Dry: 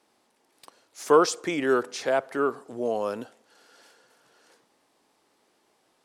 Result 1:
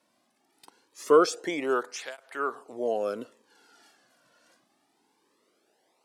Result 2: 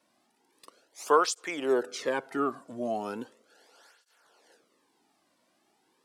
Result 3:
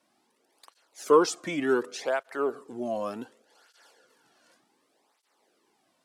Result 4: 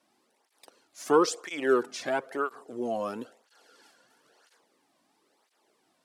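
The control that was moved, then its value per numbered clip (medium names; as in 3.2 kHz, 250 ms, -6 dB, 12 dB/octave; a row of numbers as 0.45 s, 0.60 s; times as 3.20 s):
cancelling through-zero flanger, nulls at: 0.23 Hz, 0.37 Hz, 0.67 Hz, 1 Hz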